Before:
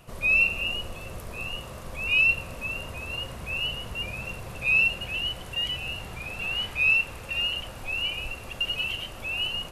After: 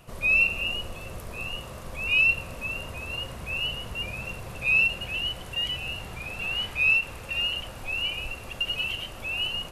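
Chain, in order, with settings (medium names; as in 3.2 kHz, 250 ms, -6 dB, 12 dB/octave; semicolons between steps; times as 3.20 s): endings held to a fixed fall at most 320 dB/s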